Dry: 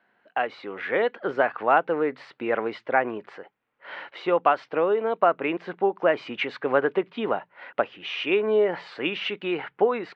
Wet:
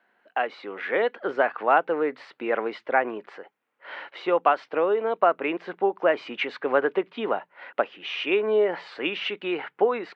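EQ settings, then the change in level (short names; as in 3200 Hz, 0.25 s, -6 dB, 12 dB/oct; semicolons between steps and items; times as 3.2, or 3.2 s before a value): HPF 230 Hz 12 dB/oct; 0.0 dB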